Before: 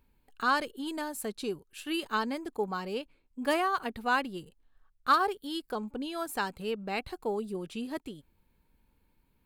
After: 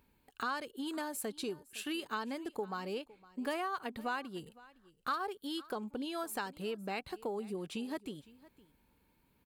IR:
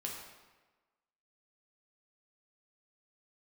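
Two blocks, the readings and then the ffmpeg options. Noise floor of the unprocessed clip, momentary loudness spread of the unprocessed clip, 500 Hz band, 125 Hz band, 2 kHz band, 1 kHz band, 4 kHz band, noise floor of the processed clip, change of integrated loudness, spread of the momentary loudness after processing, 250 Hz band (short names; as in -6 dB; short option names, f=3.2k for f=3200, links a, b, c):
-71 dBFS, 11 LU, -6.0 dB, -4.5 dB, -8.0 dB, -8.5 dB, -5.5 dB, -73 dBFS, -7.0 dB, 6 LU, -4.5 dB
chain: -af "highpass=f=110:p=1,acompressor=threshold=-40dB:ratio=3,aecho=1:1:510:0.0891,volume=2.5dB"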